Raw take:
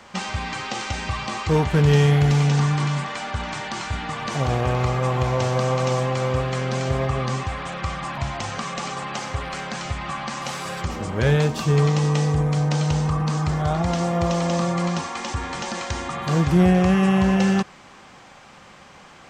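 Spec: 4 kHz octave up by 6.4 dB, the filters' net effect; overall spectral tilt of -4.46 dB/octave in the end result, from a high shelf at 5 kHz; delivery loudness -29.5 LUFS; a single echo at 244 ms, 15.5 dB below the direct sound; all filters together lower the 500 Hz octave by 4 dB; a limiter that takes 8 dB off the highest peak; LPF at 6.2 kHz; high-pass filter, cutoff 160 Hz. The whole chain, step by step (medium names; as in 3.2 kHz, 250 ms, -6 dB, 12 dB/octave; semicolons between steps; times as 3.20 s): high-pass 160 Hz; low-pass 6.2 kHz; peaking EQ 500 Hz -5 dB; peaking EQ 4 kHz +6 dB; treble shelf 5 kHz +7 dB; peak limiter -15 dBFS; delay 244 ms -15.5 dB; trim -3.5 dB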